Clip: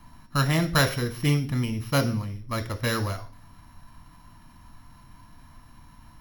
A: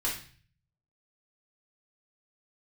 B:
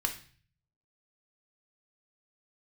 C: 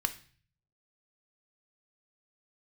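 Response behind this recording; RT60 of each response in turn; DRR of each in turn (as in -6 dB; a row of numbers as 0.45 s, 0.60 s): C; 0.45 s, 0.45 s, 0.45 s; -5.5 dB, 3.5 dB, 8.5 dB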